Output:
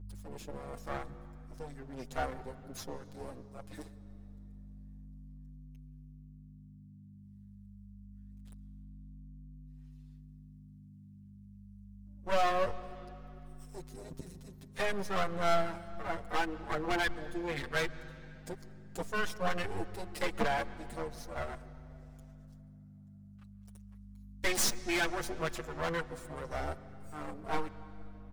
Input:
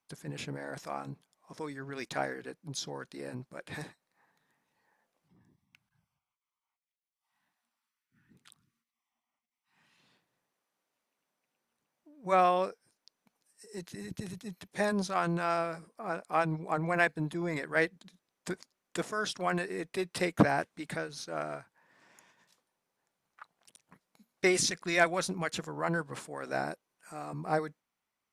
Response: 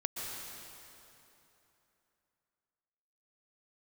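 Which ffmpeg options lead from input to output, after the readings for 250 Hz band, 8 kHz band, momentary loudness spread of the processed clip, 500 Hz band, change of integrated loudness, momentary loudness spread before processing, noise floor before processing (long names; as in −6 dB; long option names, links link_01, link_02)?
−5.5 dB, −1.5 dB, 23 LU, −3.5 dB, −3.5 dB, 16 LU, below −85 dBFS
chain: -filter_complex "[0:a]afwtdn=0.0158,bass=frequency=250:gain=-14,treble=frequency=4000:gain=13,asplit=2[link_01][link_02];[link_02]alimiter=limit=-18dB:level=0:latency=1:release=286,volume=0dB[link_03];[link_01][link_03]amix=inputs=2:normalize=0,aphaser=in_gain=1:out_gain=1:delay=4.4:decay=0.34:speed=0.71:type=sinusoidal,aeval=exprs='max(val(0),0)':channel_layout=same,aeval=exprs='val(0)+0.00631*(sin(2*PI*50*n/s)+sin(2*PI*2*50*n/s)/2+sin(2*PI*3*50*n/s)/3+sin(2*PI*4*50*n/s)/4+sin(2*PI*5*50*n/s)/5)':channel_layout=same,volume=18.5dB,asoftclip=hard,volume=-18.5dB,asplit=2[link_04][link_05];[1:a]atrim=start_sample=2205,lowpass=6100,lowshelf=frequency=350:gain=9[link_06];[link_05][link_06]afir=irnorm=-1:irlink=0,volume=-17dB[link_07];[link_04][link_07]amix=inputs=2:normalize=0,asplit=2[link_08][link_09];[link_09]adelay=6.8,afreqshift=0.25[link_10];[link_08][link_10]amix=inputs=2:normalize=1"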